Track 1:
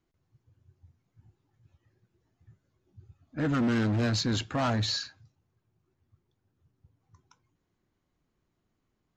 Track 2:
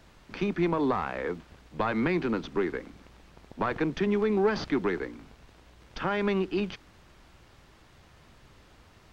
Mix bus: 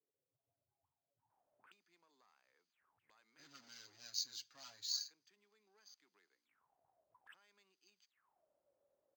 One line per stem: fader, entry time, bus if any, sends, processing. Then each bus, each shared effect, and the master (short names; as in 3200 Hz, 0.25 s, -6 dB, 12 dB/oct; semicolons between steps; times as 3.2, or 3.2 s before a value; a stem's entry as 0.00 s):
+1.0 dB, 0.00 s, no send, bell 82 Hz +6.5 dB 0.39 oct; comb 7.2 ms, depth 72%
-8.5 dB, 1.30 s, no send, high shelf 4200 Hz -9.5 dB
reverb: off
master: auto-wah 450–4800 Hz, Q 12, up, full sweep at -40 dBFS; decimation joined by straight lines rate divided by 4×